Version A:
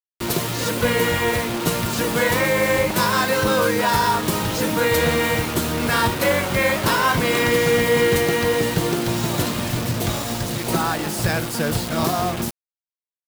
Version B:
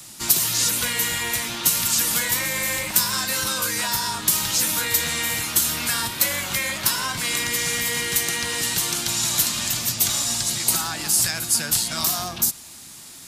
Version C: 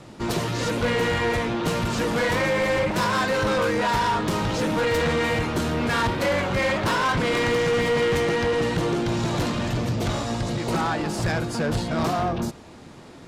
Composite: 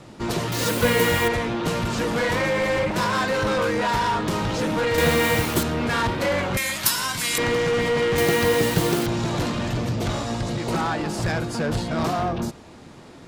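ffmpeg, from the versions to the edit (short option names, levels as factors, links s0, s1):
-filter_complex "[0:a]asplit=3[s0][s1][s2];[2:a]asplit=5[s3][s4][s5][s6][s7];[s3]atrim=end=0.522[s8];[s0]atrim=start=0.518:end=1.282[s9];[s4]atrim=start=1.278:end=4.982[s10];[s1]atrim=start=4.978:end=5.632[s11];[s5]atrim=start=5.628:end=6.572[s12];[1:a]atrim=start=6.568:end=7.382[s13];[s6]atrim=start=7.378:end=8.182[s14];[s2]atrim=start=8.178:end=9.062[s15];[s7]atrim=start=9.058[s16];[s8][s9]acrossfade=d=0.004:c1=hsin:c2=hsin[s17];[s17][s10]acrossfade=d=0.004:c1=hsin:c2=hsin[s18];[s18][s11]acrossfade=d=0.004:c1=hsin:c2=hsin[s19];[s19][s12]acrossfade=d=0.004:c1=hsin:c2=hsin[s20];[s20][s13]acrossfade=d=0.004:c1=hsin:c2=hsin[s21];[s21][s14]acrossfade=d=0.004:c1=hsin:c2=hsin[s22];[s22][s15]acrossfade=d=0.004:c1=hsin:c2=hsin[s23];[s23][s16]acrossfade=d=0.004:c1=hsin:c2=hsin"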